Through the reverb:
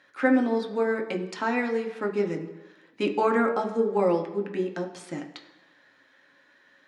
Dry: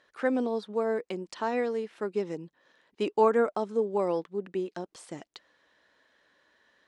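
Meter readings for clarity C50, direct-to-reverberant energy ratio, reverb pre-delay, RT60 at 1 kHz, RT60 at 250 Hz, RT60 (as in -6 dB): 10.5 dB, 2.5 dB, 3 ms, 1.2 s, 1.0 s, 1.2 s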